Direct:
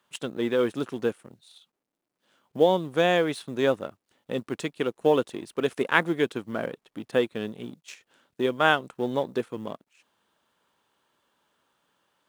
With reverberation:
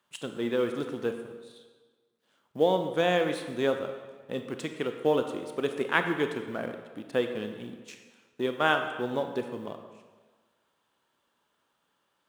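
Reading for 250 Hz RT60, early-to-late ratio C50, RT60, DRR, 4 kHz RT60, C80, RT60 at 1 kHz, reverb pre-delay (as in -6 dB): 1.4 s, 7.0 dB, 1.4 s, 6.0 dB, 1.1 s, 8.5 dB, 1.5 s, 25 ms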